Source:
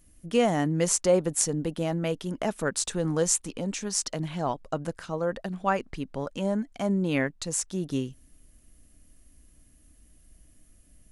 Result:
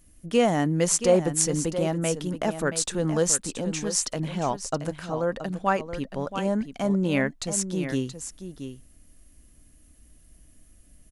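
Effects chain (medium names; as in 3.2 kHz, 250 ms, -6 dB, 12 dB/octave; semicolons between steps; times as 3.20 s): delay 676 ms -10 dB; trim +2 dB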